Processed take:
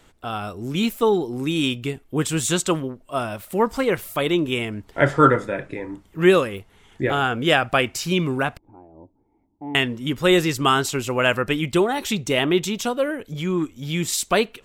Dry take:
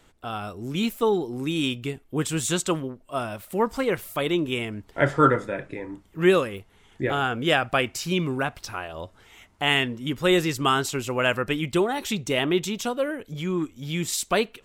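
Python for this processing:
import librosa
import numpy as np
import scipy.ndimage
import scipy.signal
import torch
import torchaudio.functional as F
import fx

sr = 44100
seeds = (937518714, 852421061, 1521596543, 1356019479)

y = fx.formant_cascade(x, sr, vowel='u', at=(8.57, 9.75))
y = y * 10.0 ** (3.5 / 20.0)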